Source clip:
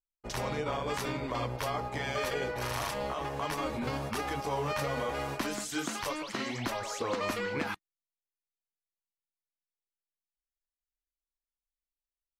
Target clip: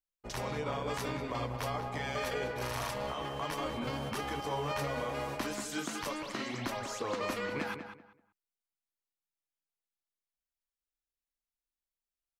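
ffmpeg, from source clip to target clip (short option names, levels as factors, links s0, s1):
-filter_complex "[0:a]asettb=1/sr,asplit=3[s0][s1][s2];[s0]atrim=end=3.074[s3];[s1]atrim=start=3.07:end=4.78,asetpts=PTS-STARTPTS,afade=t=in:d=0.004:c=qsin,afade=t=out:st=1.706:d=0.004:c=qsin,aeval=exprs='val(0)+0.00562*sin(2*PI*3100*n/s)':c=same[s4];[s2]atrim=start=4.776[s5];[s3][s4]acrossfade=d=0.004:c1=hsin:c2=qsin[s6];[s6][s5]acrossfade=d=0.004:c1=qsin:c2=hsin,asplit=2[s7][s8];[s8]adelay=193,lowpass=f=2400:p=1,volume=0.398,asplit=2[s9][s10];[s10]adelay=193,lowpass=f=2400:p=1,volume=0.24,asplit=2[s11][s12];[s12]adelay=193,lowpass=f=2400:p=1,volume=0.24[s13];[s7][s9][s11][s13]amix=inputs=4:normalize=0,volume=0.708"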